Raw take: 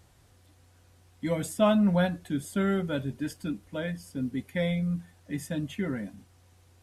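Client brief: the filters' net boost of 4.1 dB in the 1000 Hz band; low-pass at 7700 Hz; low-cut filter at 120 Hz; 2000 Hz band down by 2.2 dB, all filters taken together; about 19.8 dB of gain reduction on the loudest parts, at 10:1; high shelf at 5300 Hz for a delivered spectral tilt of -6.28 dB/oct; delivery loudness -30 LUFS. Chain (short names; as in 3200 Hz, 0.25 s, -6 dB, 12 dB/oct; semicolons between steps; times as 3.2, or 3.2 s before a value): HPF 120 Hz; LPF 7700 Hz; bell 1000 Hz +7 dB; bell 2000 Hz -5 dB; high shelf 5300 Hz -6.5 dB; compressor 10:1, threshold -36 dBFS; gain +11.5 dB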